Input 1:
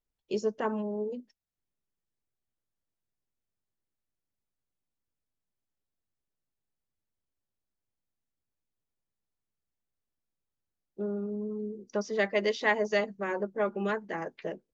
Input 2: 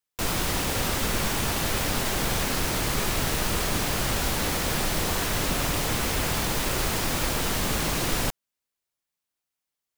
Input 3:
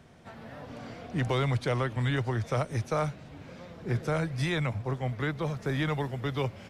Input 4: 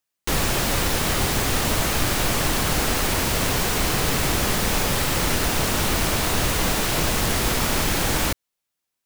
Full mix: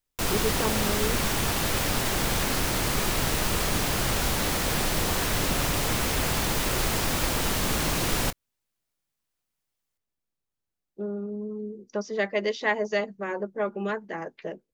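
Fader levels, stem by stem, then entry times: +1.0 dB, 0.0 dB, muted, −17.5 dB; 0.00 s, 0.00 s, muted, 0.00 s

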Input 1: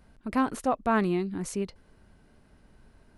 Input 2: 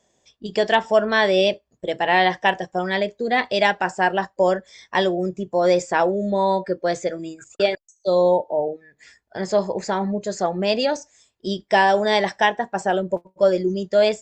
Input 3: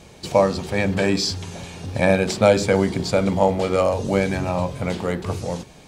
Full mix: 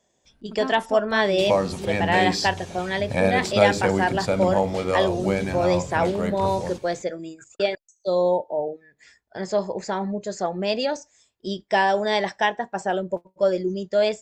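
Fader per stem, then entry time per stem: −6.0, −3.5, −4.0 decibels; 0.25, 0.00, 1.15 seconds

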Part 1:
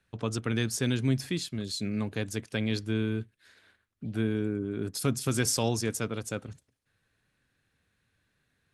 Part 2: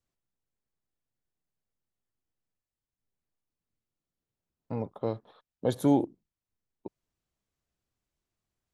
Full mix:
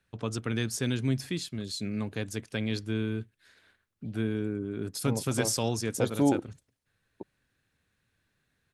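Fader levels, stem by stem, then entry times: −1.5, −1.0 decibels; 0.00, 0.35 seconds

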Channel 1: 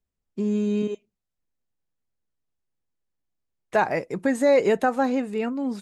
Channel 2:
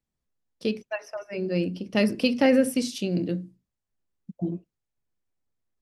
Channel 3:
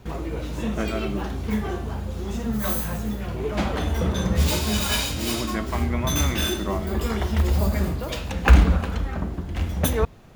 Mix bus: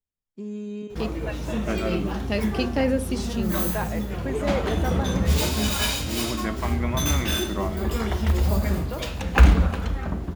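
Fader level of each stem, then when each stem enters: −9.5, −3.5, −0.5 decibels; 0.00, 0.35, 0.90 seconds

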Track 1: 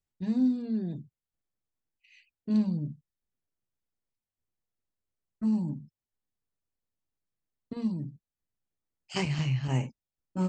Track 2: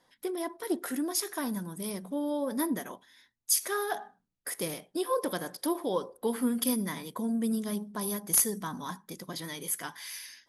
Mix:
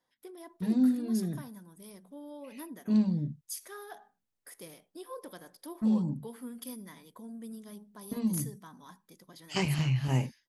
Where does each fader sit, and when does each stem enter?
+0.5, −14.0 decibels; 0.40, 0.00 seconds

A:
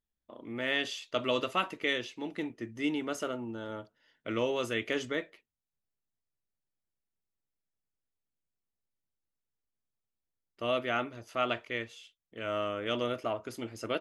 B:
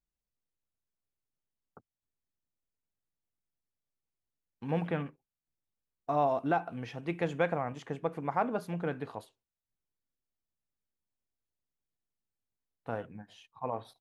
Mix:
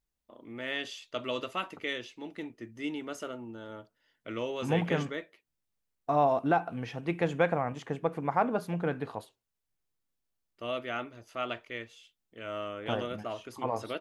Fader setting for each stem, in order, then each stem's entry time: −4.0, +3.0 decibels; 0.00, 0.00 seconds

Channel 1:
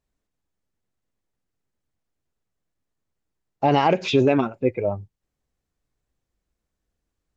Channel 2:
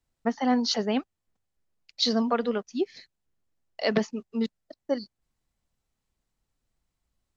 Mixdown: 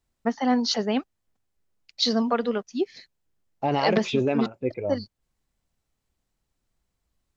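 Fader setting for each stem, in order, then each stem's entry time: −6.0, +1.5 decibels; 0.00, 0.00 seconds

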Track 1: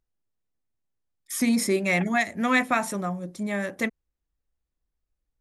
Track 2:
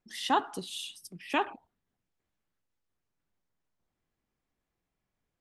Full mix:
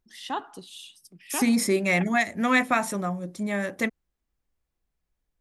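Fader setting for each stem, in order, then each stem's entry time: +0.5, −4.5 decibels; 0.00, 0.00 seconds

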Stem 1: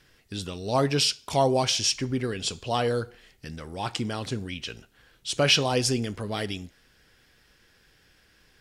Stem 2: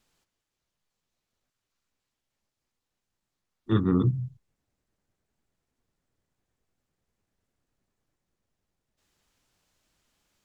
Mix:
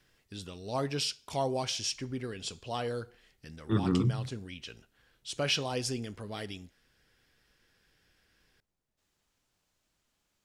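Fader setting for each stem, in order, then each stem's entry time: −9.0, −4.5 decibels; 0.00, 0.00 seconds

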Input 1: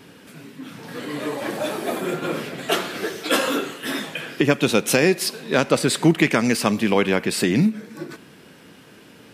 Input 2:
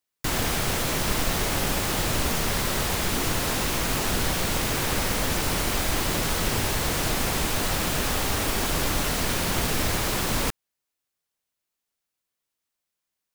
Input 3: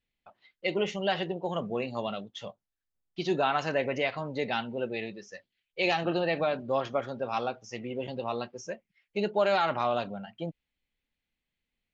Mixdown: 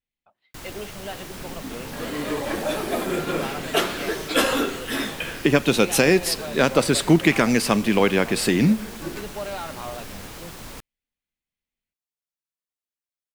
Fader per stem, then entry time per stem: 0.0, −13.5, −7.0 decibels; 1.05, 0.30, 0.00 seconds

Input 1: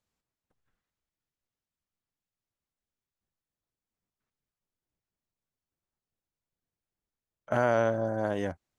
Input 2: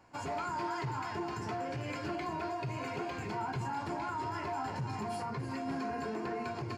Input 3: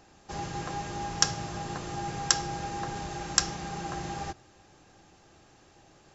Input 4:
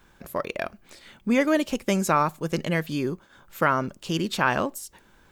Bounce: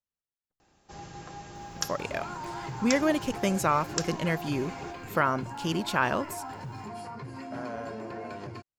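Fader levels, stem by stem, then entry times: −14.5, −2.5, −8.0, −3.5 decibels; 0.00, 1.85, 0.60, 1.55 seconds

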